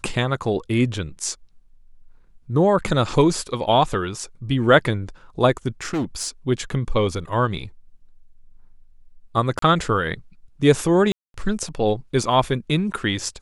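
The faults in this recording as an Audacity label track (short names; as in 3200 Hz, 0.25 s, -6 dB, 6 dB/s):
5.810000	6.280000	clipped -20 dBFS
9.590000	9.620000	gap 33 ms
11.120000	11.340000	gap 0.222 s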